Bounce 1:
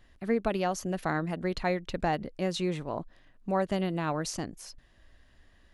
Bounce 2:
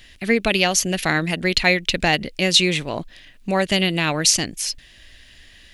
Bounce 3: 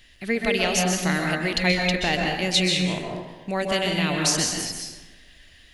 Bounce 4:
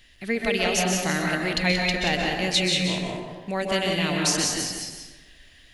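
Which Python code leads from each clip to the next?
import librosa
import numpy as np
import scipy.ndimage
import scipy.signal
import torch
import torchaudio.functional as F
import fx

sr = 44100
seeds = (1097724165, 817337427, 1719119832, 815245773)

y1 = fx.high_shelf_res(x, sr, hz=1700.0, db=12.0, q=1.5)
y1 = y1 * 10.0 ** (8.5 / 20.0)
y2 = fx.rev_plate(y1, sr, seeds[0], rt60_s=1.2, hf_ratio=0.55, predelay_ms=115, drr_db=0.0)
y2 = y2 * 10.0 ** (-6.5 / 20.0)
y3 = y2 + 10.0 ** (-6.5 / 20.0) * np.pad(y2, (int(180 * sr / 1000.0), 0))[:len(y2)]
y3 = y3 * 10.0 ** (-1.5 / 20.0)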